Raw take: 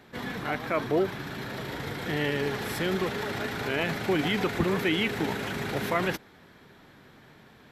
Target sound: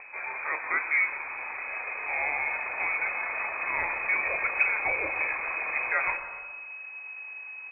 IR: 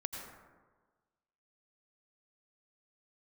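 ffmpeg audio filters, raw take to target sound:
-filter_complex "[0:a]aeval=exprs='val(0)+0.002*(sin(2*PI*50*n/s)+sin(2*PI*2*50*n/s)/2+sin(2*PI*3*50*n/s)/3+sin(2*PI*4*50*n/s)/4+sin(2*PI*5*50*n/s)/5)':c=same,asubboost=boost=11:cutoff=59,acompressor=mode=upward:threshold=-40dB:ratio=2.5,lowpass=f=2.2k:t=q:w=0.5098,lowpass=f=2.2k:t=q:w=0.6013,lowpass=f=2.2k:t=q:w=0.9,lowpass=f=2.2k:t=q:w=2.563,afreqshift=-2600,equalizer=f=190:w=0.94:g=-11,asplit=2[a][b];[b]adelay=291.5,volume=-20dB,highshelf=f=4k:g=-6.56[c];[a][c]amix=inputs=2:normalize=0,asplit=2[d][e];[1:a]atrim=start_sample=2205,lowpass=1.5k,adelay=30[f];[e][f]afir=irnorm=-1:irlink=0,volume=-5dB[g];[d][g]amix=inputs=2:normalize=0"

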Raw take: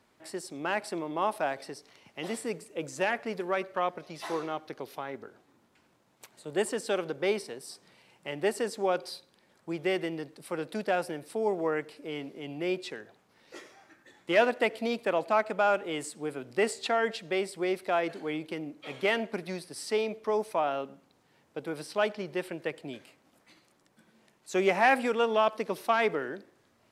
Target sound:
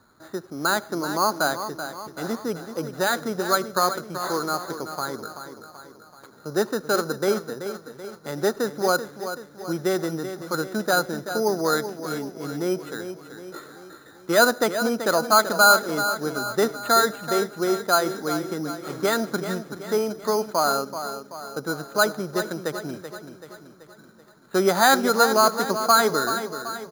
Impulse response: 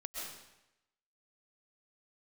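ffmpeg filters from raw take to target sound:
-af "lowpass=f=1.4k:t=q:w=6,lowshelf=f=360:g=11,acrusher=samples=8:mix=1:aa=0.000001,aecho=1:1:382|764|1146|1528|1910|2292:0.316|0.164|0.0855|0.0445|0.0231|0.012"

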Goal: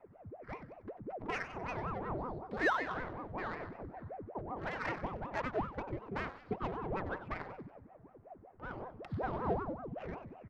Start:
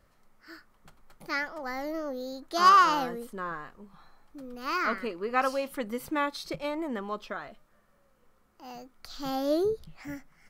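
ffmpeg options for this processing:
-filter_complex "[0:a]lowpass=3.1k,equalizer=f=1.9k:t=o:w=0.23:g=5,aecho=1:1:3.5:0.32,acompressor=threshold=-42dB:ratio=3,afreqshift=-19,flanger=delay=0.7:depth=6:regen=29:speed=0.34:shape=triangular,adynamicsmooth=sensitivity=7:basefreq=930,asplit=5[a][b][c][d][e];[b]adelay=94,afreqshift=82,volume=-12.5dB[f];[c]adelay=188,afreqshift=164,volume=-20.2dB[g];[d]adelay=282,afreqshift=246,volume=-28dB[h];[e]adelay=376,afreqshift=328,volume=-35.7dB[i];[a][f][g][h][i]amix=inputs=5:normalize=0,aeval=exprs='val(0)*sin(2*PI*430*n/s+430*0.8/5.3*sin(2*PI*5.3*n/s))':c=same,volume=10dB"

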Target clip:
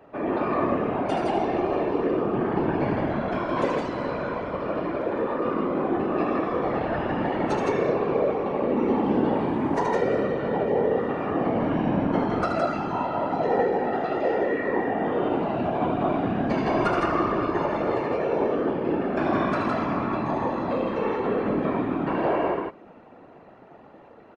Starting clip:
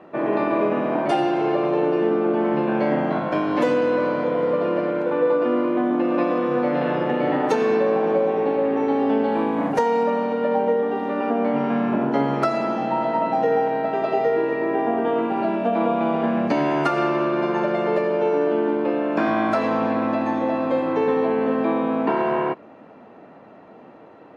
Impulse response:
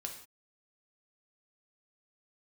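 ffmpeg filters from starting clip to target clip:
-af "aresample=22050,aresample=44100,aecho=1:1:75.8|163.3:0.501|0.794,afftfilt=real='hypot(re,im)*cos(2*PI*random(0))':imag='hypot(re,im)*sin(2*PI*random(1))':win_size=512:overlap=0.75"

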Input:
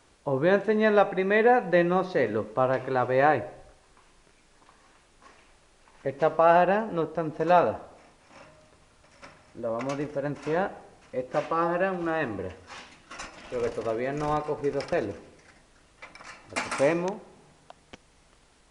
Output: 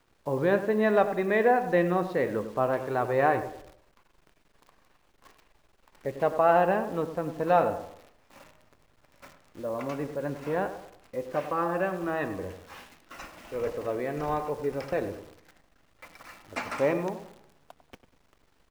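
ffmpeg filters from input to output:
-filter_complex "[0:a]aemphasis=mode=reproduction:type=50fm,acrusher=bits=9:dc=4:mix=0:aa=0.000001,asplit=2[a][b];[b]adelay=98,lowpass=f=1.7k:p=1,volume=-11dB,asplit=2[c][d];[d]adelay=98,lowpass=f=1.7k:p=1,volume=0.39,asplit=2[e][f];[f]adelay=98,lowpass=f=1.7k:p=1,volume=0.39,asplit=2[g][h];[h]adelay=98,lowpass=f=1.7k:p=1,volume=0.39[i];[a][c][e][g][i]amix=inputs=5:normalize=0,volume=-2.5dB"

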